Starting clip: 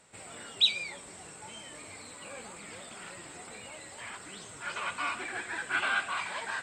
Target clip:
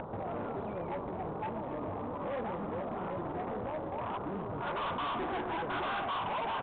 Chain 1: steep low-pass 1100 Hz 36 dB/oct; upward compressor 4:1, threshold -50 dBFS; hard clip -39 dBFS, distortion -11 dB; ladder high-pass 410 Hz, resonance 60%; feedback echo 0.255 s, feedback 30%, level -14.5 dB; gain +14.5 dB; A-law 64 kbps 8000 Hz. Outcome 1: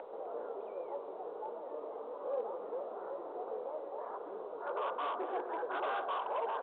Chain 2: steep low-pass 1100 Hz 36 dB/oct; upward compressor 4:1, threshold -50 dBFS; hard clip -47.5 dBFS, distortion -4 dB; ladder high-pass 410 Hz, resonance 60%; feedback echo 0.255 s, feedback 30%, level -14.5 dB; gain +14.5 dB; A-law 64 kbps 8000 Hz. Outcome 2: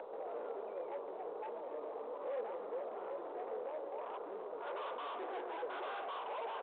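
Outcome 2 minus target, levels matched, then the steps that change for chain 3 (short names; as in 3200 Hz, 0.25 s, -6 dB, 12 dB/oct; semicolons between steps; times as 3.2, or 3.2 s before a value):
500 Hz band +3.5 dB
remove: ladder high-pass 410 Hz, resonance 60%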